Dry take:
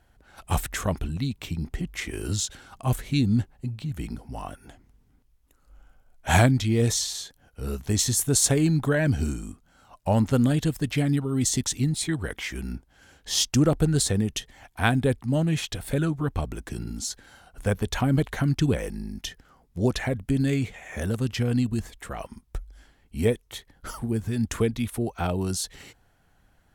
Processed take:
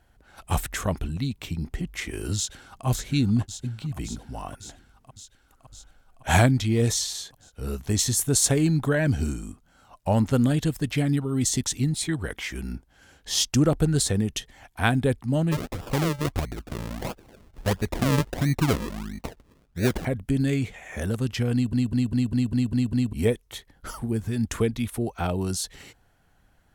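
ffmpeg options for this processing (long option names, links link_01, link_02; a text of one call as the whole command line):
ffmpeg -i in.wav -filter_complex "[0:a]asplit=2[link_01][link_02];[link_02]afade=type=in:start_time=2.36:duration=0.01,afade=type=out:start_time=2.86:duration=0.01,aecho=0:1:560|1120|1680|2240|2800|3360|3920|4480|5040|5600|6160|6720:0.446684|0.335013|0.25126|0.188445|0.141333|0.106|0.0795001|0.0596251|0.0447188|0.0335391|0.0251543|0.0188657[link_03];[link_01][link_03]amix=inputs=2:normalize=0,asplit=3[link_04][link_05][link_06];[link_04]afade=type=out:start_time=15.51:duration=0.02[link_07];[link_05]acrusher=samples=41:mix=1:aa=0.000001:lfo=1:lforange=41:lforate=1.5,afade=type=in:start_time=15.51:duration=0.02,afade=type=out:start_time=20.04:duration=0.02[link_08];[link_06]afade=type=in:start_time=20.04:duration=0.02[link_09];[link_07][link_08][link_09]amix=inputs=3:normalize=0,asplit=9[link_10][link_11][link_12][link_13][link_14][link_15][link_16][link_17][link_18];[link_10]atrim=end=21.732[link_19];[link_11]atrim=start=21.528:end=21.732[link_20];[link_12]atrim=start=21.528:end=21.732[link_21];[link_13]atrim=start=21.528:end=21.732[link_22];[link_14]atrim=start=21.528:end=21.732[link_23];[link_15]atrim=start=21.528:end=21.732[link_24];[link_16]atrim=start=21.528:end=21.732[link_25];[link_17]atrim=start=21.528:end=21.732[link_26];[link_18]atrim=start=23.128[link_27];[link_19][link_20]acrossfade=duration=0.004:curve1=hsin:curve2=hsin[link_28];[link_28][link_21]acrossfade=duration=0.004:curve1=hsin:curve2=hsin[link_29];[link_29][link_22]acrossfade=duration=0.004:curve1=hsin:curve2=hsin[link_30];[link_30][link_23]acrossfade=duration=0.004:curve1=hsin:curve2=hsin[link_31];[link_31][link_24]acrossfade=duration=0.004:curve1=hsin:curve2=hsin[link_32];[link_32][link_25]acrossfade=duration=0.004:curve1=hsin:curve2=hsin[link_33];[link_33][link_26]acrossfade=duration=0.004:curve1=hsin:curve2=hsin[link_34];[link_34][link_27]acrossfade=duration=0.004:curve1=hsin:curve2=hsin" out.wav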